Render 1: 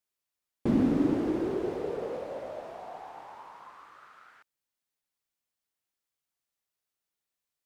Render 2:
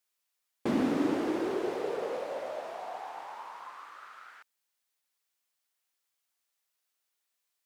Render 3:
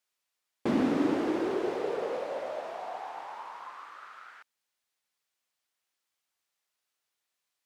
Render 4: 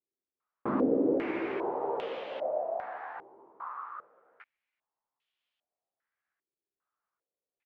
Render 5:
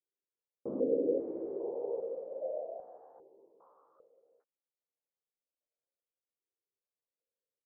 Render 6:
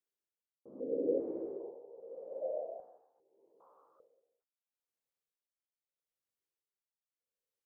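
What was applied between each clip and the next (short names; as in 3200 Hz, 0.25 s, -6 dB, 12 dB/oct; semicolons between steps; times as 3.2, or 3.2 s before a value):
HPF 780 Hz 6 dB/oct; gain +6 dB
high shelf 9400 Hz -9 dB; gain +1.5 dB
doubler 15 ms -5.5 dB; stepped low-pass 2.5 Hz 370–3100 Hz; gain -5.5 dB
ladder low-pass 560 Hz, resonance 65%
tremolo 0.79 Hz, depth 87%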